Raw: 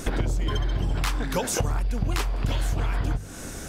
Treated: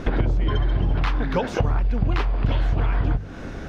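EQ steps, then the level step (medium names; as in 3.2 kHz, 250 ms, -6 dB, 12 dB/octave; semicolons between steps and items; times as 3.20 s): distance through air 290 m; +4.5 dB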